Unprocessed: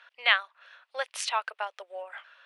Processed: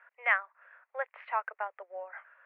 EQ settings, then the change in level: steep high-pass 350 Hz 36 dB/oct; elliptic low-pass 2100 Hz, stop band 80 dB; air absorption 68 m; -1.5 dB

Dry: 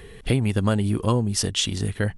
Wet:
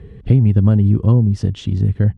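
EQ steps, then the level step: BPF 100–7100 Hz; tilt -3.5 dB/oct; low shelf 220 Hz +11 dB; -6.0 dB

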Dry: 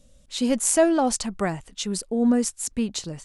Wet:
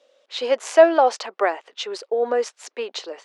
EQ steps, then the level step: steep high-pass 410 Hz 36 dB/oct; air absorption 230 m; +8.5 dB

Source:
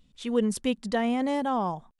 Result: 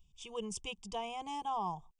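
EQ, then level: dynamic EQ 1300 Hz, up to +4 dB, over -40 dBFS, Q 1.4; fixed phaser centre 600 Hz, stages 4; fixed phaser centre 2800 Hz, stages 8; -1.5 dB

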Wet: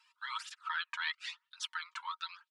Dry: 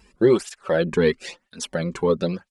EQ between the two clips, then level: rippled Chebyshev high-pass 910 Hz, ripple 9 dB; high shelf 6500 Hz -10.5 dB; dynamic EQ 1800 Hz, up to +5 dB, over -52 dBFS, Q 1.9; -1.5 dB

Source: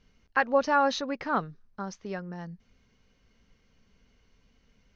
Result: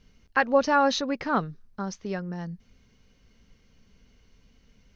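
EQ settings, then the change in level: bell 1100 Hz -4.5 dB 2.9 oct; +6.0 dB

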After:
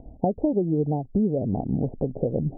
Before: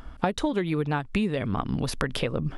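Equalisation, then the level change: steep low-pass 770 Hz 72 dB/oct; tilt +3.5 dB/oct; low shelf 450 Hz +12 dB; +1.5 dB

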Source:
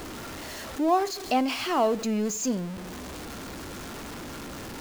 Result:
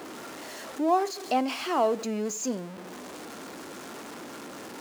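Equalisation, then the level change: HPF 260 Hz 12 dB/oct; dynamic EQ 8400 Hz, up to +5 dB, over -49 dBFS, Q 0.71; high shelf 2400 Hz -7.5 dB; 0.0 dB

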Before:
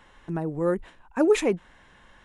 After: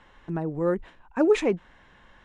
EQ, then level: air absorption 80 m; 0.0 dB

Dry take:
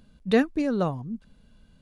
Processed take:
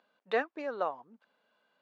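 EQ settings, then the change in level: HPF 600 Hz 12 dB/oct; band-pass 860 Hz, Q 0.61; air absorption 55 m; 0.0 dB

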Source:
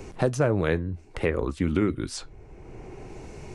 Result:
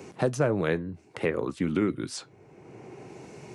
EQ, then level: HPF 120 Hz 24 dB/oct; -1.5 dB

